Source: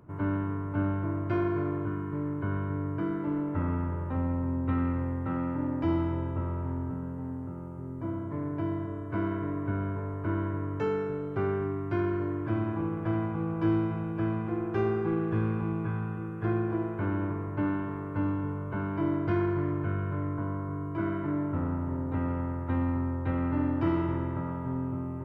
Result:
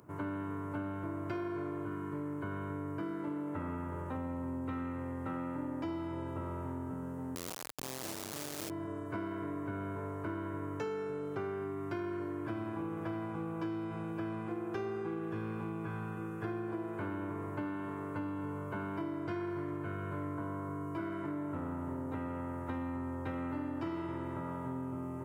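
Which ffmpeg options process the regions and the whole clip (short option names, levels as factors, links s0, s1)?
-filter_complex "[0:a]asettb=1/sr,asplit=3[s0][s1][s2];[s0]atrim=end=7.354[s3];[s1]atrim=start=7.35:end=8.7,asetpts=PTS-STARTPTS,afade=t=in:d=0.004:c=qsin,afade=t=out:st=1.346:d=0.004:c=qsin,lowpass=1200,acrusher=bits=3:dc=4:mix=0:aa=0.000001[s4];[s2]atrim=start=8.696[s5];[s3][s4]acrossfade=d=0.004:c1=hsin:c2=qsin[s6];[s6][s5]acrossfade=d=0.004:c1=qsin:c2=hsin,highpass=81,bass=f=250:g=-6,treble=f=4000:g=12,acompressor=threshold=0.0178:ratio=6"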